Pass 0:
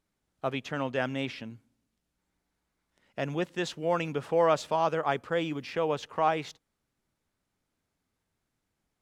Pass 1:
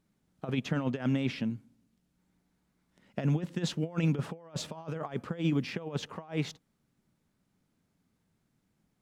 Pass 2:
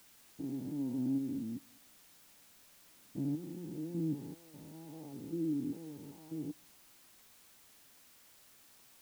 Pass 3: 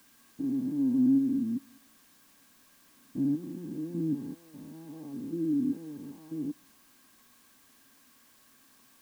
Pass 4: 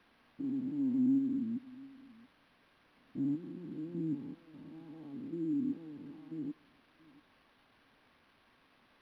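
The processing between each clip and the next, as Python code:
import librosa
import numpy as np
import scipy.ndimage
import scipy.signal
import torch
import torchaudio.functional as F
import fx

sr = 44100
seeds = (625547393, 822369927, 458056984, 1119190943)

y1 = fx.over_compress(x, sr, threshold_db=-33.0, ratio=-0.5)
y1 = fx.peak_eq(y1, sr, hz=180.0, db=11.5, octaves=1.5)
y1 = F.gain(torch.from_numpy(y1), -4.0).numpy()
y2 = fx.spec_steps(y1, sr, hold_ms=200)
y2 = fx.formant_cascade(y2, sr, vowel='u')
y2 = fx.dmg_noise_colour(y2, sr, seeds[0], colour='white', level_db=-65.0)
y2 = F.gain(torch.from_numpy(y2), 3.0).numpy()
y3 = fx.small_body(y2, sr, hz=(250.0, 1100.0, 1600.0), ring_ms=45, db=12)
y4 = y3 + 10.0 ** (-22.0 / 20.0) * np.pad(y3, (int(683 * sr / 1000.0), 0))[:len(y3)]
y4 = np.interp(np.arange(len(y4)), np.arange(len(y4))[::6], y4[::6])
y4 = F.gain(torch.from_numpy(y4), -5.5).numpy()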